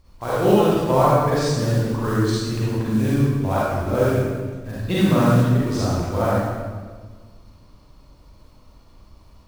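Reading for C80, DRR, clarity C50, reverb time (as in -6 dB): -1.0 dB, -8.5 dB, -5.0 dB, 1.5 s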